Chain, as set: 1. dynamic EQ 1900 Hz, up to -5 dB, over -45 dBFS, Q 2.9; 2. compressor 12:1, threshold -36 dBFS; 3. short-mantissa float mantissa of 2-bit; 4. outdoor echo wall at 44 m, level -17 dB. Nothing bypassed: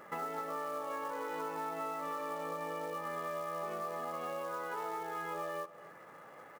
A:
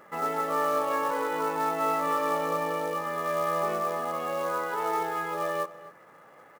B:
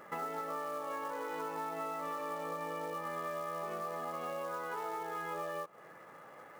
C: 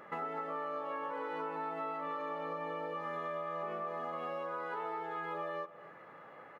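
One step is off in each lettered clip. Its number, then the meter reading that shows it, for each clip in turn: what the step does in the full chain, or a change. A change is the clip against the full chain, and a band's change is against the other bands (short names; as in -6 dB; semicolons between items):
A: 2, mean gain reduction 8.5 dB; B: 4, echo-to-direct -18.0 dB to none; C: 3, distortion -20 dB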